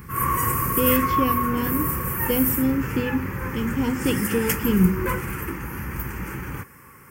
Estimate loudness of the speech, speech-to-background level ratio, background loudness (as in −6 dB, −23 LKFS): −25.0 LKFS, 0.0 dB, −25.0 LKFS